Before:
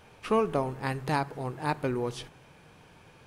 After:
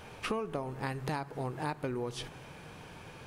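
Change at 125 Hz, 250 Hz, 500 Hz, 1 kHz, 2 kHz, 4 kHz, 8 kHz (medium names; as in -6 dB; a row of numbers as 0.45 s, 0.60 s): -4.5 dB, -6.0 dB, -7.0 dB, -7.0 dB, -4.5 dB, -1.5 dB, -1.5 dB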